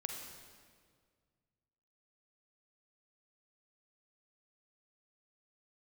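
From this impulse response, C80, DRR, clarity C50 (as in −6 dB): 4.5 dB, 2.0 dB, 3.0 dB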